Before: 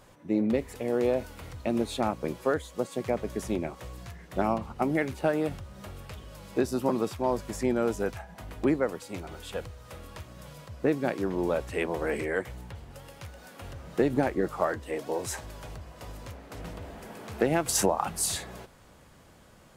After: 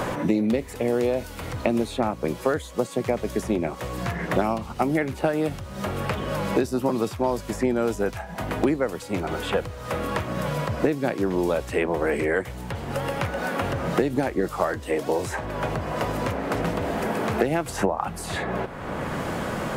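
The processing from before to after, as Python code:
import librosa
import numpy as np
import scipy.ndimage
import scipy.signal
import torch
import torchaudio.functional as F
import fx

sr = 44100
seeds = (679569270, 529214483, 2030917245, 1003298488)

y = fx.band_squash(x, sr, depth_pct=100)
y = y * librosa.db_to_amplitude(4.0)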